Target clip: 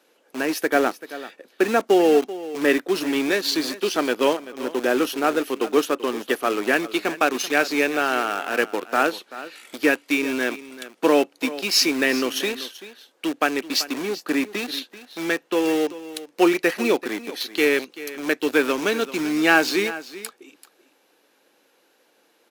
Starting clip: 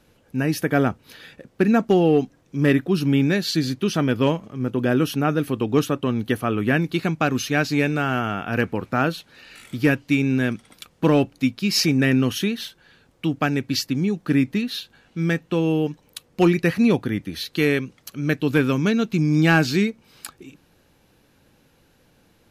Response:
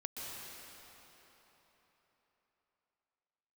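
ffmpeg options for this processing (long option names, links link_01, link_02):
-filter_complex "[0:a]asplit=2[link_01][link_02];[link_02]acrusher=bits=3:mix=0:aa=0.000001,volume=-8.5dB[link_03];[link_01][link_03]amix=inputs=2:normalize=0,highpass=frequency=330:width=0.5412,highpass=frequency=330:width=1.3066,aecho=1:1:386:0.168" -ar 48000 -c:a aac -b:a 128k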